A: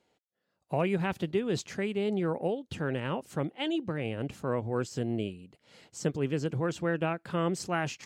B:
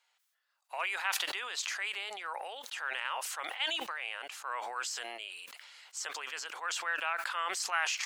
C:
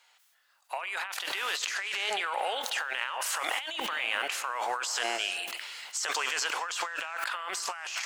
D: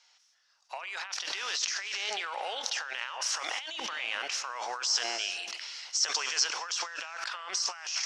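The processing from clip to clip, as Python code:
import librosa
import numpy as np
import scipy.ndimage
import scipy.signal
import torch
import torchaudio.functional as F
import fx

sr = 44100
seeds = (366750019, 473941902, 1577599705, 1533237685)

y1 = scipy.signal.sosfilt(scipy.signal.butter(4, 1000.0, 'highpass', fs=sr, output='sos'), x)
y1 = fx.sustainer(y1, sr, db_per_s=24.0)
y1 = y1 * 10.0 ** (3.0 / 20.0)
y2 = fx.rev_gated(y1, sr, seeds[0], gate_ms=430, shape='flat', drr_db=12.0)
y2 = fx.over_compress(y2, sr, threshold_db=-41.0, ratio=-1.0)
y2 = y2 * 10.0 ** (7.5 / 20.0)
y3 = fx.lowpass_res(y2, sr, hz=5600.0, q=6.6)
y3 = y3 * 10.0 ** (-5.0 / 20.0)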